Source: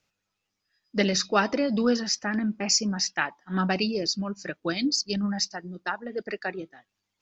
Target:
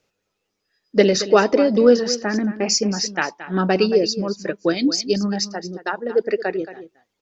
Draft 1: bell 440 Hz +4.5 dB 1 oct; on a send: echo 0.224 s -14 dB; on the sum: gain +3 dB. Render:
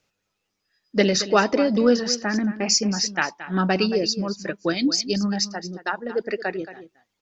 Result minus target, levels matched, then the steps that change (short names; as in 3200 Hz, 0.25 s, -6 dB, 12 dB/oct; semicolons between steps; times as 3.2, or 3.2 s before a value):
500 Hz band -3.0 dB
change: bell 440 Hz +11.5 dB 1 oct